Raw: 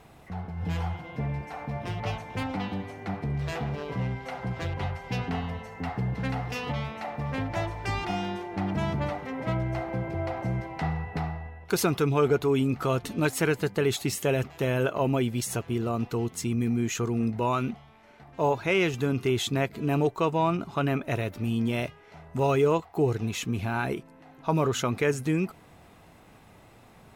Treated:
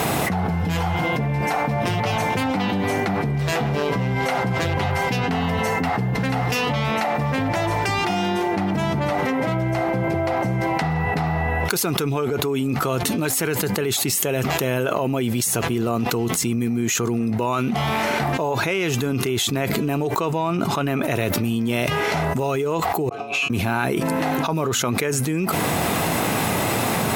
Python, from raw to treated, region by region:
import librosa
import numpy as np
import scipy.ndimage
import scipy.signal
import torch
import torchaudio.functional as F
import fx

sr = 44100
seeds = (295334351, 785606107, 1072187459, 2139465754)

y = fx.chain(x, sr, fx.over_compress(threshold_db=-35.0, ratio=-1.0),
    fx.vowel_filter(vowel='a'),
    fx.comb_fb(f0_hz=140.0, decay_s=0.43, harmonics='all', damping=0.0, mix_pct=90), at=(23.09, 23.5))
y = scipy.signal.sosfilt(scipy.signal.butter(2, 120.0, 'highpass', fs=sr, output='sos'), y)
y = fx.high_shelf(y, sr, hz=7300.0, db=9.5)
y = fx.env_flatten(y, sr, amount_pct=100)
y = y * librosa.db_to_amplitude(-3.0)